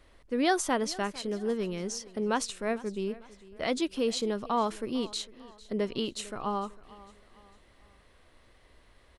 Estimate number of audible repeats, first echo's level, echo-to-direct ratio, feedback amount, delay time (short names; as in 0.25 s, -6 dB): 2, -20.0 dB, -19.0 dB, 42%, 0.451 s